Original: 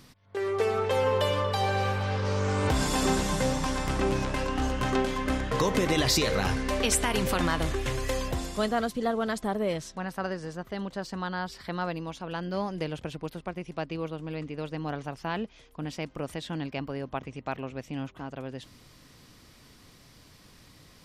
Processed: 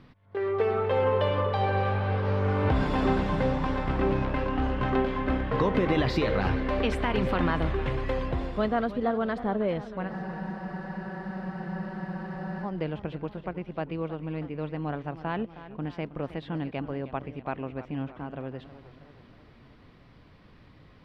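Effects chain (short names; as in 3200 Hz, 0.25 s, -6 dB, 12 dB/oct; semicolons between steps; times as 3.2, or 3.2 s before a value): air absorption 400 m; spectral freeze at 10.11, 2.53 s; warbling echo 0.317 s, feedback 57%, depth 90 cents, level -14.5 dB; gain +2 dB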